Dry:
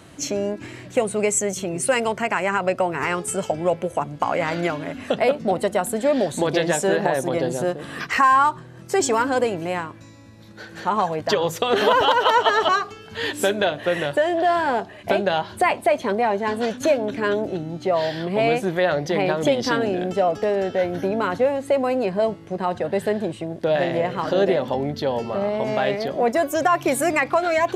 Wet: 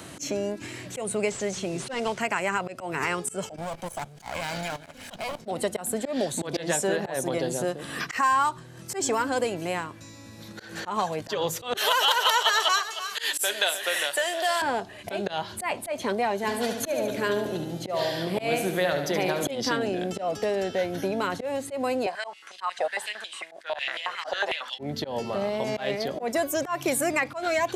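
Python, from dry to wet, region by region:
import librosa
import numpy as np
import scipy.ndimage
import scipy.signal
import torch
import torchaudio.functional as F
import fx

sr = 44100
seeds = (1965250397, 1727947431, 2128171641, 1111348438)

y = fx.chain(x, sr, fx.delta_mod(bps=64000, step_db=-37.5),
    fx.lowpass(hz=6400.0, slope=12), at=(1.28, 2.21))
y = fx.chain(y, sr, fx.lower_of_two(delay_ms=1.3),
    fx.high_shelf(hz=3800.0, db=5.5),
    fx.level_steps(step_db=15), at=(3.56, 5.46))
y = fx.chain(y, sr, fx.highpass(hz=410.0, slope=12),
    fx.tilt_eq(slope=4.5),
    fx.echo_single(ms=309, db=-14.0), at=(11.77, 14.62))
y = fx.chain(y, sr, fx.peak_eq(hz=12000.0, db=9.5, octaves=0.54),
    fx.echo_feedback(ms=73, feedback_pct=54, wet_db=-8), at=(16.36, 19.51))
y = fx.chain(y, sr, fx.lowpass(hz=11000.0, slope=24),
    fx.filter_held_highpass(hz=11.0, low_hz=730.0, high_hz=3200.0), at=(22.06, 24.79))
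y = fx.high_shelf(y, sr, hz=4000.0, db=9.0)
y = fx.auto_swell(y, sr, attack_ms=146.0)
y = fx.band_squash(y, sr, depth_pct=40)
y = y * librosa.db_to_amplitude(-5.5)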